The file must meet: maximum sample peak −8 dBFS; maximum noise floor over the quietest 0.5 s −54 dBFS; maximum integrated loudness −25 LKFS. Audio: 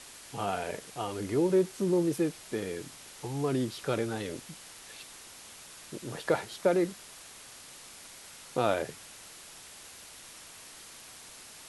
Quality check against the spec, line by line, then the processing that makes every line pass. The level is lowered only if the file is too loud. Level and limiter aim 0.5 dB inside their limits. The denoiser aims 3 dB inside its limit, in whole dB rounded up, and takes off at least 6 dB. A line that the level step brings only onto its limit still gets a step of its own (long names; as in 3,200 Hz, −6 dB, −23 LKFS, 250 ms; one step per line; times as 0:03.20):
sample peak −13.5 dBFS: in spec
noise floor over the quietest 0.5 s −50 dBFS: out of spec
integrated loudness −31.5 LKFS: in spec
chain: broadband denoise 7 dB, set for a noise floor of −50 dBFS